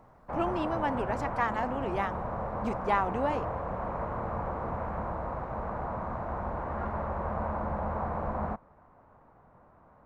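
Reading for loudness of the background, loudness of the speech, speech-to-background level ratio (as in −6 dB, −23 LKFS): −35.0 LKFS, −32.5 LKFS, 2.5 dB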